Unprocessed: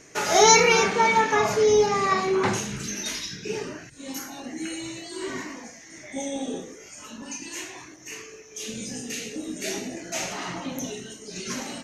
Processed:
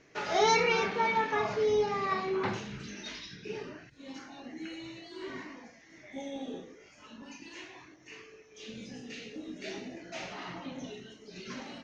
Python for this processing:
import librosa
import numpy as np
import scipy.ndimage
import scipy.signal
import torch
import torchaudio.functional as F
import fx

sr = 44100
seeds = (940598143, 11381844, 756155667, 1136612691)

y = scipy.signal.sosfilt(scipy.signal.butter(4, 4600.0, 'lowpass', fs=sr, output='sos'), x)
y = y * librosa.db_to_amplitude(-8.5)